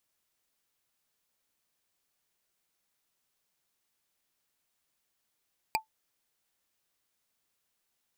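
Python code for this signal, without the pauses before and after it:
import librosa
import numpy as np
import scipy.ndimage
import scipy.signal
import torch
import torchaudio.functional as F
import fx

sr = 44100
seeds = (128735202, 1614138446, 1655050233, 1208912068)

y = fx.strike_wood(sr, length_s=0.45, level_db=-21.5, body='bar', hz=878.0, decay_s=0.12, tilt_db=0.5, modes=5)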